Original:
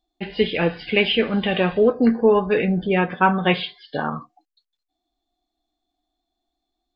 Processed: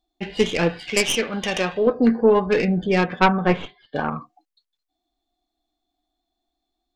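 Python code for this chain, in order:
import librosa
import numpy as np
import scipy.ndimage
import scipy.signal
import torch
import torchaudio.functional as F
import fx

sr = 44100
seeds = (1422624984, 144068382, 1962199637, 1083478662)

y = fx.tracing_dist(x, sr, depth_ms=0.17)
y = fx.low_shelf(y, sr, hz=390.0, db=-9.0, at=(0.79, 1.87))
y = fx.lowpass(y, sr, hz=1800.0, slope=12, at=(3.28, 3.96))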